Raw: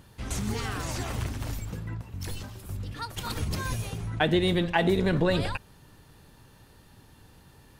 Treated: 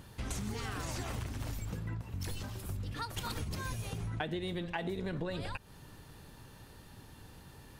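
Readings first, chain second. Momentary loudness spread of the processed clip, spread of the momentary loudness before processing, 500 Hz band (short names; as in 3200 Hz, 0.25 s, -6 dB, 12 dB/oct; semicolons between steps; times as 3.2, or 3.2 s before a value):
17 LU, 13 LU, -12.5 dB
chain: compressor 6:1, threshold -36 dBFS, peak gain reduction 15.5 dB; gain +1 dB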